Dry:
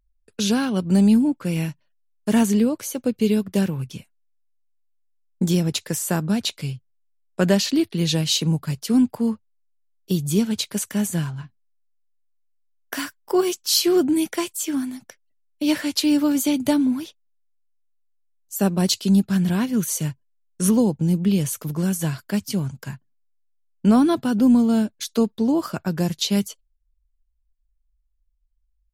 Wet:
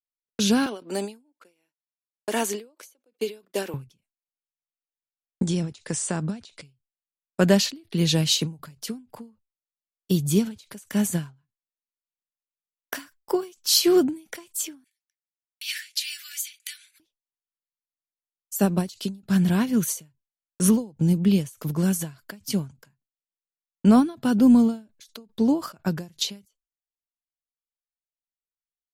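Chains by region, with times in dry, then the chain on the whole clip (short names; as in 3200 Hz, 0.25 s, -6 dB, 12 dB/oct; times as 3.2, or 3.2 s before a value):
0.66–3.74 gate -40 dBFS, range -26 dB + HPF 340 Hz 24 dB/oct
5.42–6.65 compressor 3:1, threshold -22 dBFS + brick-wall FIR low-pass 10000 Hz + mismatched tape noise reduction encoder only
14.84–17 steep high-pass 1700 Hz 48 dB/oct + mismatched tape noise reduction encoder only
whole clip: gate -49 dBFS, range -44 dB; ending taper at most 190 dB/s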